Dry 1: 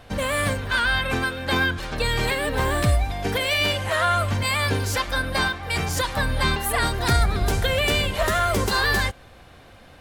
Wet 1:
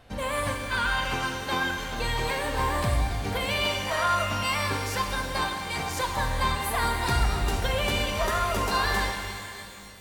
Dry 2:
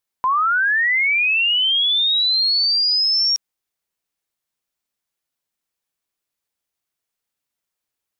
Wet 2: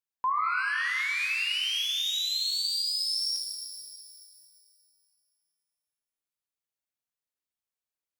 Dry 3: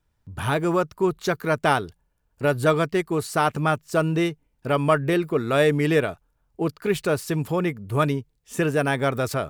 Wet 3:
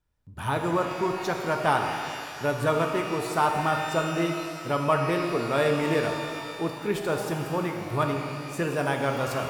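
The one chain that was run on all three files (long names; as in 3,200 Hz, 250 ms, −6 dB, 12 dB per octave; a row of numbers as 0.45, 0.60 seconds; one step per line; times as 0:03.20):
dynamic equaliser 940 Hz, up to +7 dB, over −40 dBFS, Q 2.7
reverb with rising layers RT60 2.4 s, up +12 semitones, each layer −8 dB, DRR 3 dB
loudness normalisation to −27 LKFS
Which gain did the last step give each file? −7.5, −14.0, −6.5 decibels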